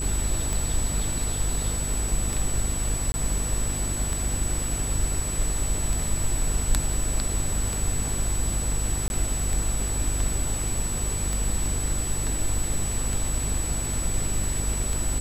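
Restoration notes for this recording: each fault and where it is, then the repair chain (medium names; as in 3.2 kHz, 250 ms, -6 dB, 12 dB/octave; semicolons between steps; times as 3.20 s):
buzz 50 Hz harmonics 9 -30 dBFS
tick 33 1/3 rpm
whine 7.9 kHz -30 dBFS
3.12–3.14 s: dropout 20 ms
9.08–9.10 s: dropout 21 ms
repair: de-click; de-hum 50 Hz, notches 9; band-stop 7.9 kHz, Q 30; interpolate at 3.12 s, 20 ms; interpolate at 9.08 s, 21 ms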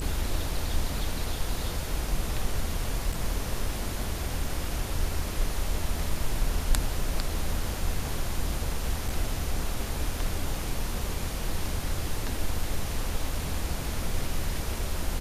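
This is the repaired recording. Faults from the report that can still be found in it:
nothing left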